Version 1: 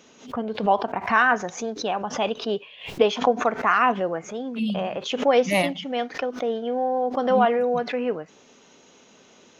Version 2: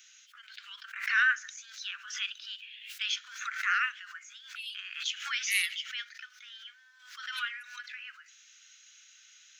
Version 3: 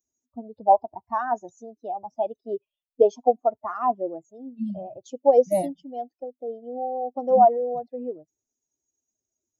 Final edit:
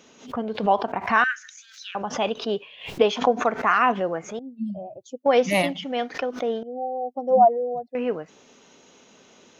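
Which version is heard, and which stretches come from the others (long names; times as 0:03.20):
1
0:01.24–0:01.95: punch in from 2
0:04.39–0:05.26: punch in from 3
0:06.63–0:07.95: punch in from 3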